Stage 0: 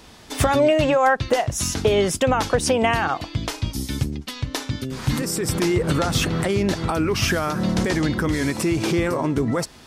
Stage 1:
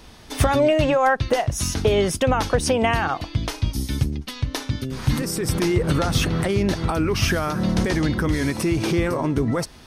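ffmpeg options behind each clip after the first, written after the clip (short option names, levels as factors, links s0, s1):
-af "lowshelf=f=74:g=9.5,bandreject=f=7400:w=8.1,volume=0.891"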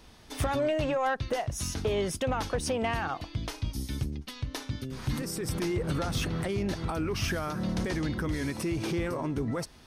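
-af "asoftclip=type=tanh:threshold=0.251,volume=0.376"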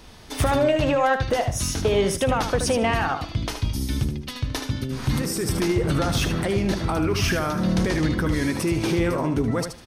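-af "aecho=1:1:76|152|228:0.398|0.0796|0.0159,volume=2.37"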